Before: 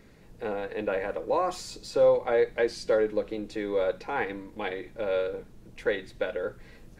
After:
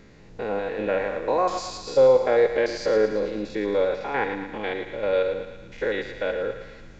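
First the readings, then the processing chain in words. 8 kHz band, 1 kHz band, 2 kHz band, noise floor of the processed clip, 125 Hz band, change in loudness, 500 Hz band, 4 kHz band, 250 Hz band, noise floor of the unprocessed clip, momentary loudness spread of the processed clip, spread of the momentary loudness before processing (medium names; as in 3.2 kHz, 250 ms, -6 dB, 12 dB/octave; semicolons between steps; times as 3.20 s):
no reading, +4.5 dB, +4.5 dB, -46 dBFS, +5.0 dB, +5.0 dB, +5.0 dB, +4.5 dB, +5.0 dB, -52 dBFS, 12 LU, 11 LU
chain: spectrogram pixelated in time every 100 ms; resampled via 16 kHz; thinning echo 113 ms, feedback 65%, high-pass 590 Hz, level -8.5 dB; trim +6 dB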